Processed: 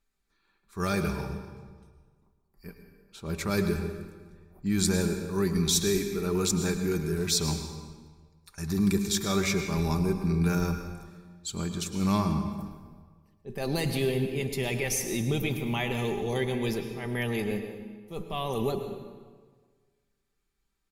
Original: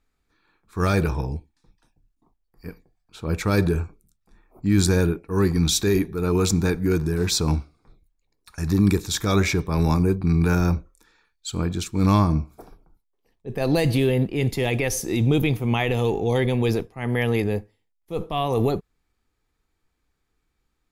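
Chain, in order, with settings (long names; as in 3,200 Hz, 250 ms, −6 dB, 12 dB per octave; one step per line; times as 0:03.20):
parametric band 12,000 Hz +6.5 dB 2.6 octaves
comb filter 5.1 ms, depth 45%
on a send: convolution reverb RT60 1.5 s, pre-delay 98 ms, DRR 7 dB
on the sum: level −8.5 dB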